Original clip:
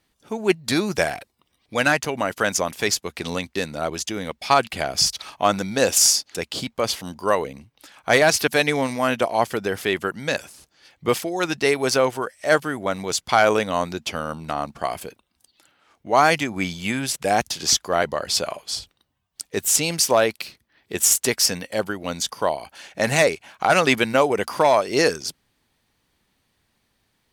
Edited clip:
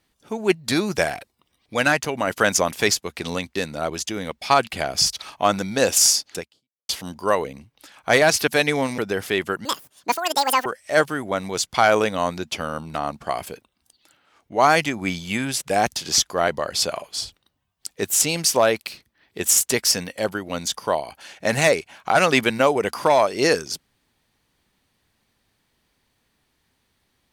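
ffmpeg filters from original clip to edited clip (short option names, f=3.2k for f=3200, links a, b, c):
-filter_complex "[0:a]asplit=7[a][b][c][d][e][f][g];[a]atrim=end=2.272[h];[b]atrim=start=2.268:end=2.932,asetpts=PTS-STARTPTS,volume=3dB[i];[c]atrim=start=2.928:end=6.89,asetpts=PTS-STARTPTS,afade=t=out:st=3.452:d=0.51:c=exp[j];[d]atrim=start=6.89:end=8.982,asetpts=PTS-STARTPTS,afade=t=in:d=0.004:c=hsin[k];[e]atrim=start=9.528:end=10.204[l];[f]atrim=start=10.2:end=12.2,asetpts=PTS-STARTPTS,asetrate=87759,aresample=44100[m];[g]atrim=start=12.196[n];[h][i]acrossfade=d=0.004:c1=hsin:c2=hsin[o];[j][k]concat=n=2:v=0:a=1[p];[o][p]acrossfade=d=0.004:c1=hsin:c2=hsin[q];[q][l]acrossfade=d=0.004:c1=hsin:c2=hsin[r];[r][m]acrossfade=d=0.004:c1=hsin:c2=hsin[s];[s][n]acrossfade=d=0.004:c1=hsin:c2=hsin"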